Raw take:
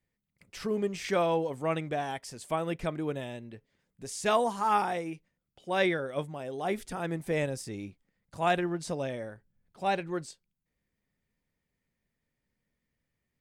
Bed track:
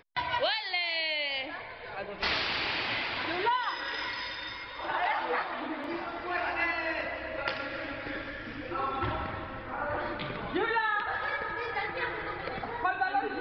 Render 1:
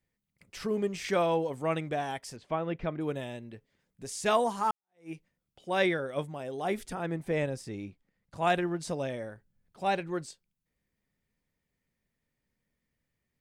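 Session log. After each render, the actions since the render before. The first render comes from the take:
0:02.36–0:03.01: high-frequency loss of the air 250 metres
0:04.71–0:05.11: fade in exponential
0:06.93–0:08.43: high-shelf EQ 4,100 Hz → 7,700 Hz −9 dB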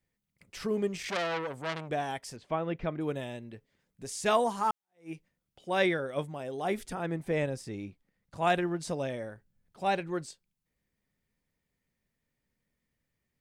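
0:00.97–0:01.90: saturating transformer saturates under 3,200 Hz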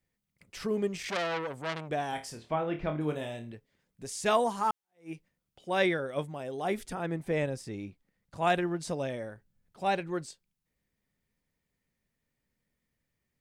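0:02.10–0:03.52: flutter between parallel walls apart 4.5 metres, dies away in 0.25 s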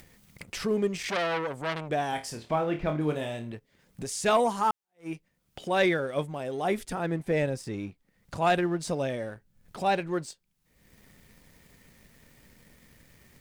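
upward compression, threshold −35 dBFS
leveller curve on the samples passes 1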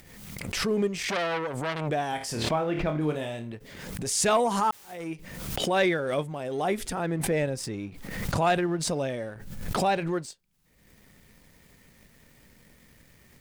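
background raised ahead of every attack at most 42 dB per second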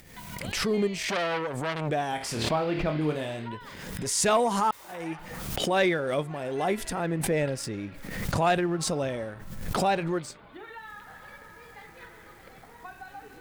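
mix in bed track −15 dB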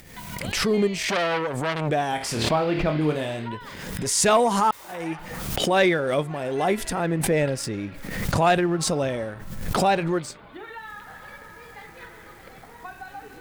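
level +4.5 dB

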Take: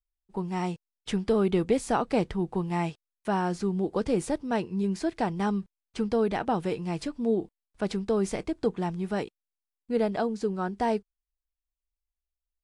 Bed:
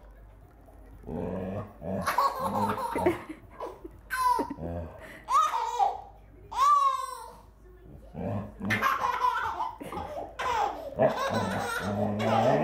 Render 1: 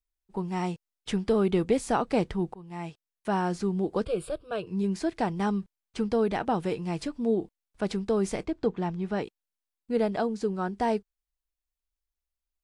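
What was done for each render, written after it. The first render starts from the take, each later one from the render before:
0:02.54–0:03.34: fade in, from −22.5 dB
0:04.05–0:04.67: phaser with its sweep stopped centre 1,300 Hz, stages 8
0:08.45–0:09.24: high-frequency loss of the air 87 metres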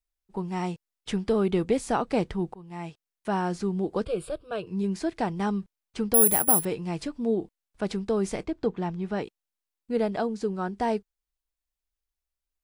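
0:06.14–0:06.65: bad sample-rate conversion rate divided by 4×, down none, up zero stuff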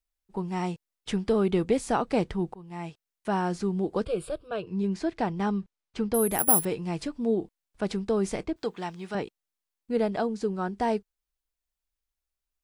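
0:04.48–0:06.39: high-frequency loss of the air 58 metres
0:08.56–0:09.15: spectral tilt +3.5 dB per octave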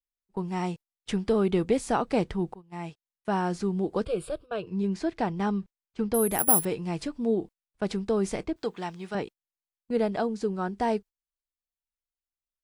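noise gate −41 dBFS, range −13 dB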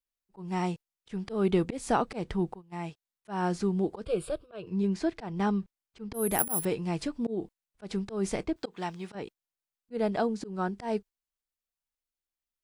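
volume swells 168 ms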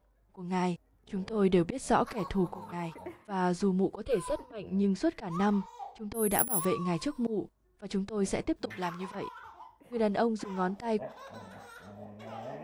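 mix in bed −18 dB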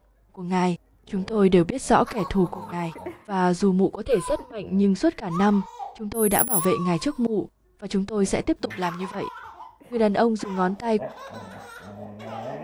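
level +8 dB
brickwall limiter −1 dBFS, peak gain reduction 2 dB

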